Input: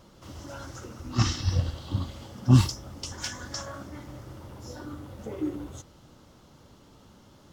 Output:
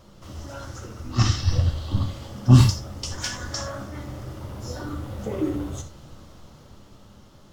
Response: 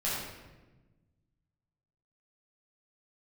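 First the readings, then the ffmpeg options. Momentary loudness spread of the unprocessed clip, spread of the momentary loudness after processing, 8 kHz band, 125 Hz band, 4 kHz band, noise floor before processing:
22 LU, 21 LU, +4.0 dB, +5.5 dB, +4.0 dB, −55 dBFS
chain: -filter_complex "[0:a]asplit=2[link_01][link_02];[1:a]atrim=start_sample=2205,atrim=end_sample=4410,lowshelf=frequency=94:gain=11[link_03];[link_02][link_03]afir=irnorm=-1:irlink=0,volume=-10dB[link_04];[link_01][link_04]amix=inputs=2:normalize=0,dynaudnorm=framelen=390:gausssize=9:maxgain=5.5dB"

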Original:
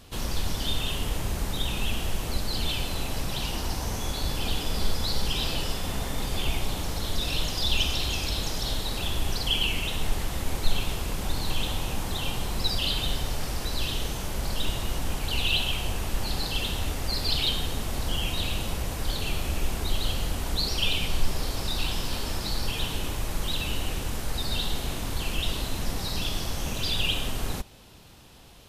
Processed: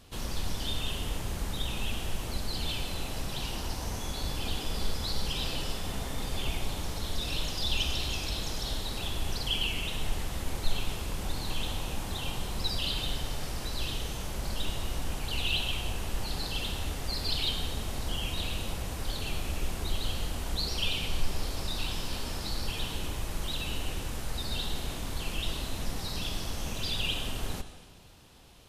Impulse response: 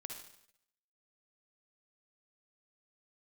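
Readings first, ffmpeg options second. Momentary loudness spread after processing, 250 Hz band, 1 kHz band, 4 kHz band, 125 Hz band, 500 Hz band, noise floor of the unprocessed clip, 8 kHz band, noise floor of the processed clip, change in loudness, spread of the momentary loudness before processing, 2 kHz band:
6 LU, −4.5 dB, −4.5 dB, −4.5 dB, −4.5 dB, −4.5 dB, −34 dBFS, −4.5 dB, −38 dBFS, −4.5 dB, 6 LU, −4.5 dB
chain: -filter_complex "[0:a]asplit=2[link_01][link_02];[1:a]atrim=start_sample=2205,asetrate=22932,aresample=44100[link_03];[link_02][link_03]afir=irnorm=-1:irlink=0,volume=-6.5dB[link_04];[link_01][link_04]amix=inputs=2:normalize=0,volume=-7.5dB"

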